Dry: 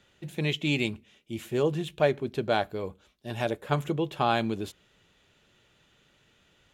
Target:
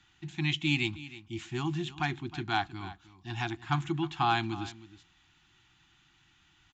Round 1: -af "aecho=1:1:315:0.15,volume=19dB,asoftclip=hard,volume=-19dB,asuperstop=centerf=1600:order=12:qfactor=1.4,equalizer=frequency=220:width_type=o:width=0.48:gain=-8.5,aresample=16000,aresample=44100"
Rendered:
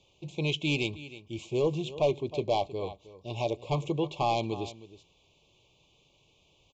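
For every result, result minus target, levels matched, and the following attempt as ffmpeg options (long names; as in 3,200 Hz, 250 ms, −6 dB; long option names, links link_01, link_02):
gain into a clipping stage and back: distortion +20 dB; 500 Hz band +10.5 dB
-af "aecho=1:1:315:0.15,volume=12dB,asoftclip=hard,volume=-12dB,asuperstop=centerf=1600:order=12:qfactor=1.4,equalizer=frequency=220:width_type=o:width=0.48:gain=-8.5,aresample=16000,aresample=44100"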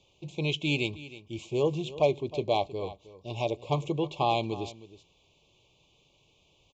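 500 Hz band +10.5 dB
-af "aecho=1:1:315:0.15,volume=12dB,asoftclip=hard,volume=-12dB,asuperstop=centerf=510:order=12:qfactor=1.4,equalizer=frequency=220:width_type=o:width=0.48:gain=-8.5,aresample=16000,aresample=44100"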